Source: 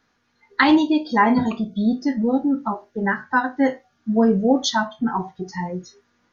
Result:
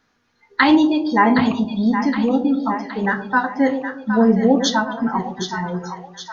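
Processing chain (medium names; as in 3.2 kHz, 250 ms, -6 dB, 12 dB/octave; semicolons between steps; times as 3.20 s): two-band feedback delay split 730 Hz, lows 118 ms, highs 767 ms, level -8 dB; trim +1.5 dB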